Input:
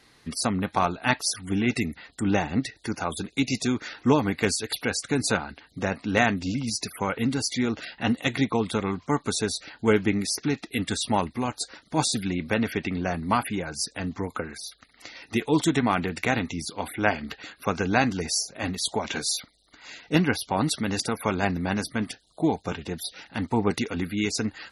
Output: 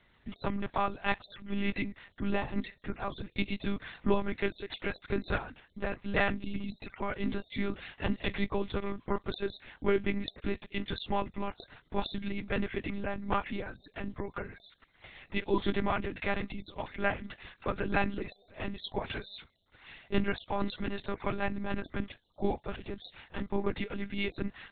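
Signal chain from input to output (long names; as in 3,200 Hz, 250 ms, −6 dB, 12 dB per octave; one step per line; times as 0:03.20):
one-pitch LPC vocoder at 8 kHz 200 Hz
level −6.5 dB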